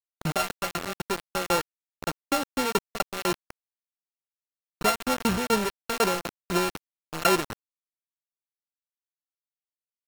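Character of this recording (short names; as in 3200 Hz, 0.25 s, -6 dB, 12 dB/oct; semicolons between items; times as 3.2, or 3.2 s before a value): a buzz of ramps at a fixed pitch in blocks of 32 samples; tremolo saw down 4 Hz, depth 95%; a quantiser's noise floor 6-bit, dither none; AAC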